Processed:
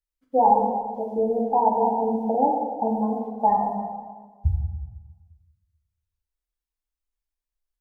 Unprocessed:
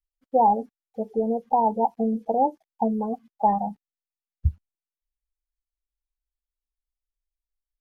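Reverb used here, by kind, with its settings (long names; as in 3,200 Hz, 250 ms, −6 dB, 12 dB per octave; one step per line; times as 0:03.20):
dense smooth reverb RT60 1.5 s, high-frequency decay 0.55×, DRR −2 dB
level −2.5 dB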